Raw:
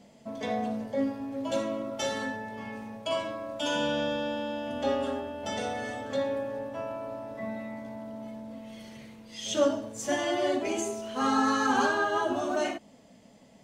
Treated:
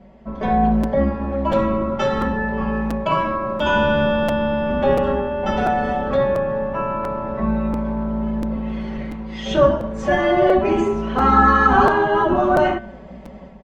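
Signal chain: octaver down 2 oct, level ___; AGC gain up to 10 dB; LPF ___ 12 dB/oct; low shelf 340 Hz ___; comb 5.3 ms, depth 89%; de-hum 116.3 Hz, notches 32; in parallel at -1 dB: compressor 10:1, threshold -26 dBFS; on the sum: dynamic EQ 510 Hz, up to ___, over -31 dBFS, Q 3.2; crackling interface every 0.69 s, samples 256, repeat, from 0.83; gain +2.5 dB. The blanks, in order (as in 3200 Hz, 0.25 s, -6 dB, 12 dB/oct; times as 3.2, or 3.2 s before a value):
0 dB, 1500 Hz, -5 dB, -8 dB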